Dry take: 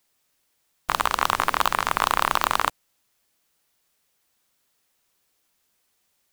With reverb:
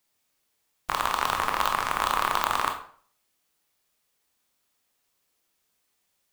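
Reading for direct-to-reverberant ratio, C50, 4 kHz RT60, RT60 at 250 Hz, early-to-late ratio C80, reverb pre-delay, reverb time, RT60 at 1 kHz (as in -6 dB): 3.0 dB, 8.0 dB, 0.40 s, 0.50 s, 12.5 dB, 19 ms, 0.50 s, 0.50 s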